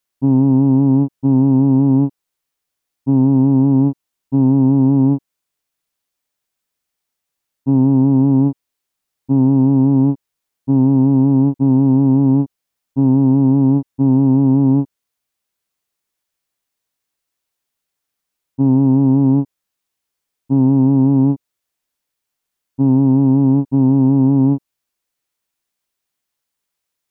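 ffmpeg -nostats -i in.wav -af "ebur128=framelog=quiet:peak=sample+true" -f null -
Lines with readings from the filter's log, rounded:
Integrated loudness:
  I:         -14.0 LUFS
  Threshold: -24.4 LUFS
Loudness range:
  LRA:         5.2 LU
  Threshold: -36.3 LUFS
  LRA low:   -19.4 LUFS
  LRA high:  -14.2 LUFS
Sample peak:
  Peak:       -5.1 dBFS
True peak:
  Peak:       -5.1 dBFS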